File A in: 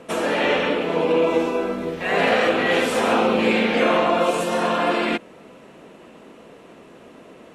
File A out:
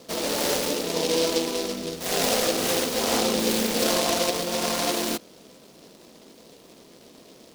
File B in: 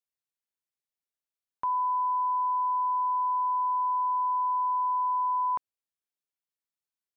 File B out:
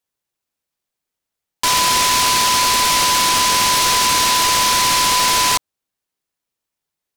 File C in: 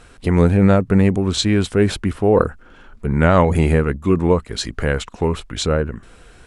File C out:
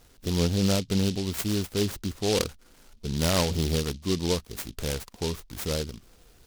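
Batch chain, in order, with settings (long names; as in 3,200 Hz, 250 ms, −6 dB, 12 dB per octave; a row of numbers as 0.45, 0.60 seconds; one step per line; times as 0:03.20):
short delay modulated by noise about 4,000 Hz, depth 0.16 ms
normalise the peak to −12 dBFS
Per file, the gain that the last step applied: −5.0, +12.0, −11.0 decibels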